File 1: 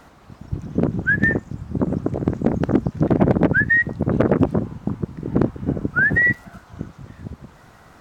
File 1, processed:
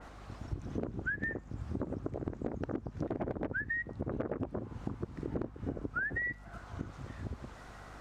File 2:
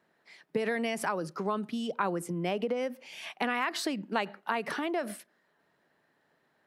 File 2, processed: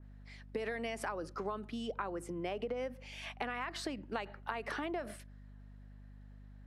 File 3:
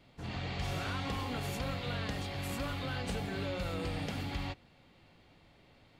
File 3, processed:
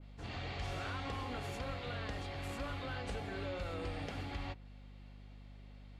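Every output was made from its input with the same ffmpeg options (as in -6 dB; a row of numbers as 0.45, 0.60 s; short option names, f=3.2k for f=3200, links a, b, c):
-af "lowpass=10k,equalizer=f=170:t=o:w=0.87:g=-9.5,bandreject=f=950:w=28,acompressor=threshold=-32dB:ratio=6,aeval=exprs='val(0)+0.00316*(sin(2*PI*50*n/s)+sin(2*PI*2*50*n/s)/2+sin(2*PI*3*50*n/s)/3+sin(2*PI*4*50*n/s)/4+sin(2*PI*5*50*n/s)/5)':c=same,adynamicequalizer=threshold=0.00224:dfrequency=2500:dqfactor=0.7:tfrequency=2500:tqfactor=0.7:attack=5:release=100:ratio=0.375:range=2.5:mode=cutabove:tftype=highshelf,volume=-2dB"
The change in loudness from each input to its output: -18.5, -7.5, -4.5 LU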